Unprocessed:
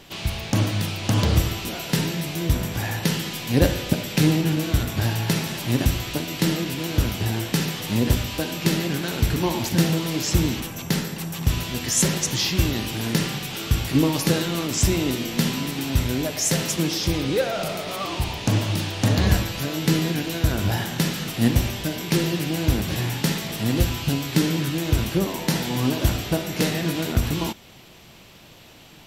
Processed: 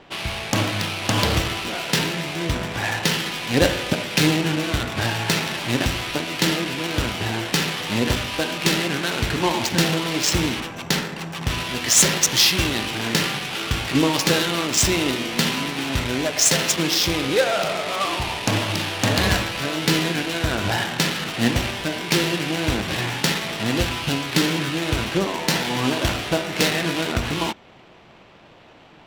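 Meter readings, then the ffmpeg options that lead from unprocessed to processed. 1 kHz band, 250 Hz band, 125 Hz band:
+6.0 dB, -0.5 dB, -3.5 dB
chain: -filter_complex "[0:a]adynamicsmooth=sensitivity=4:basefreq=1.3k,aemphasis=mode=production:type=50kf,asplit=2[a][b];[b]highpass=f=720:p=1,volume=12dB,asoftclip=type=tanh:threshold=-1dB[c];[a][c]amix=inputs=2:normalize=0,lowpass=f=6.4k:p=1,volume=-6dB"

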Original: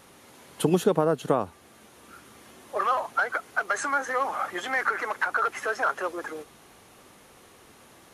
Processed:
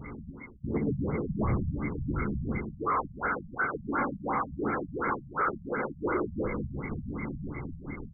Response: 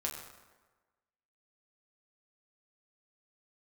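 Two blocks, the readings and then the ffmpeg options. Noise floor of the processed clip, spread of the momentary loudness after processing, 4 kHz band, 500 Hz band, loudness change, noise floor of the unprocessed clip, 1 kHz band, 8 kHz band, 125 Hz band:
-48 dBFS, 9 LU, under -40 dB, -6.0 dB, -5.5 dB, -54 dBFS, -4.5 dB, under -40 dB, +4.5 dB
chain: -filter_complex "[0:a]tiltshelf=f=690:g=9,areverse,acompressor=threshold=-39dB:ratio=5,areverse,aecho=1:1:0.8:0.96[a];[1:a]atrim=start_sample=2205[b];[a][b]afir=irnorm=-1:irlink=0,aeval=exprs='val(0)+0.00398*sin(2*PI*2100*n/s)':c=same,dynaudnorm=f=230:g=9:m=6.5dB,afftfilt=real='hypot(re,im)*cos(2*PI*random(0))':imag='hypot(re,im)*sin(2*PI*random(1))':win_size=512:overlap=0.75,aecho=1:1:14|59:0.335|0.316,aresample=11025,aeval=exprs='0.0631*sin(PI/2*1.78*val(0)/0.0631)':c=same,aresample=44100,afftfilt=real='re*lt(b*sr/1024,200*pow(2400/200,0.5+0.5*sin(2*PI*2.8*pts/sr)))':imag='im*lt(b*sr/1024,200*pow(2400/200,0.5+0.5*sin(2*PI*2.8*pts/sr)))':win_size=1024:overlap=0.75,volume=1.5dB"

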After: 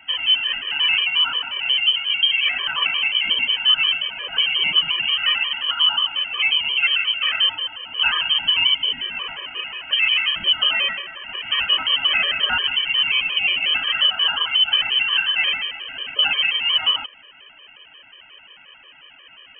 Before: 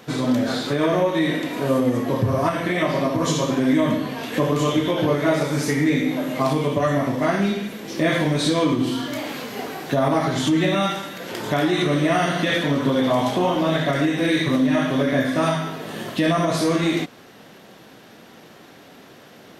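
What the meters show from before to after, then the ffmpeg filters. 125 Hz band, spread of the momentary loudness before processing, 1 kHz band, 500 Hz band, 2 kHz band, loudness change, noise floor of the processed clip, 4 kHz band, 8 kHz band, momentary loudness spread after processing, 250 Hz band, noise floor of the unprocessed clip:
under -25 dB, 7 LU, -6.5 dB, -23.0 dB, +7.0 dB, +3.5 dB, -48 dBFS, +16.0 dB, under -40 dB, 8 LU, under -25 dB, -46 dBFS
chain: -af "lowpass=f=2.8k:t=q:w=0.5098,lowpass=f=2.8k:t=q:w=0.6013,lowpass=f=2.8k:t=q:w=0.9,lowpass=f=2.8k:t=q:w=2.563,afreqshift=-3300,afftfilt=real='re*gt(sin(2*PI*5.6*pts/sr)*(1-2*mod(floor(b*sr/1024/320),2)),0)':imag='im*gt(sin(2*PI*5.6*pts/sr)*(1-2*mod(floor(b*sr/1024/320),2)),0)':win_size=1024:overlap=0.75,volume=3.5dB"

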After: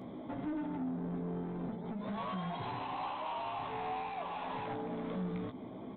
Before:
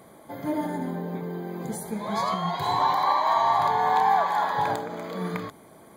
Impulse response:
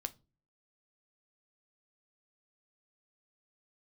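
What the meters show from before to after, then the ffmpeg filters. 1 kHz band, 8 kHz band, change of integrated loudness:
-17.0 dB, under -35 dB, -13.5 dB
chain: -filter_complex "[0:a]equalizer=f=100:t=o:w=0.67:g=6,equalizer=f=250:t=o:w=0.67:g=11,equalizer=f=1.6k:t=o:w=0.67:g=-11,acompressor=threshold=-33dB:ratio=6,aresample=8000,asoftclip=type=tanh:threshold=-37dB,aresample=44100,asplit=2[a][b];[b]adelay=16,volume=-6dB[c];[a][c]amix=inputs=2:normalize=0,volume=1dB"

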